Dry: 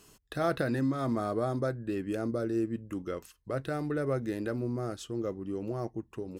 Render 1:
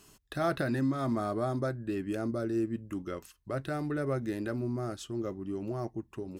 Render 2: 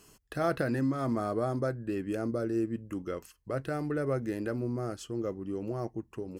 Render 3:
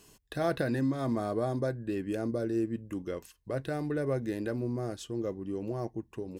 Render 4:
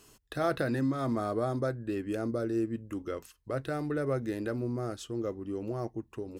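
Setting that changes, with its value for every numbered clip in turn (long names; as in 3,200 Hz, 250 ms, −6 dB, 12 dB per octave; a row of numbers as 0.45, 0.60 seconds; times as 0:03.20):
notch filter, centre frequency: 480, 3,700, 1,300, 180 Hertz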